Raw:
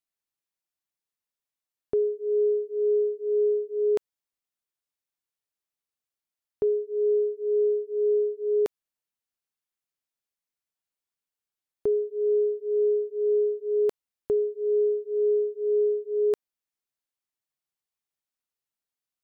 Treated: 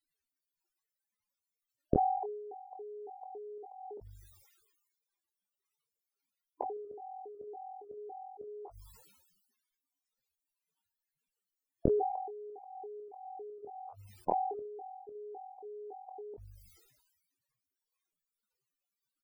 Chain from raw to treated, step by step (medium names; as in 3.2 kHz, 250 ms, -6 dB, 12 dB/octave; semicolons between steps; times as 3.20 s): pitch shift switched off and on +10.5 st, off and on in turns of 279 ms; band-stop 680 Hz, Q 12; de-hum 49.73 Hz, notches 2; in parallel at -1 dB: level held to a coarse grid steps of 13 dB; on the sum: peak limiter -19 dBFS, peak gain reduction 5.5 dB; inverted gate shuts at -27 dBFS, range -33 dB; loudest bins only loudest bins 32; bass shelf 440 Hz +6.5 dB; on a send: early reflections 15 ms -16.5 dB, 25 ms -12.5 dB; on the sum: decay stretcher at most 42 dB/s; trim +8.5 dB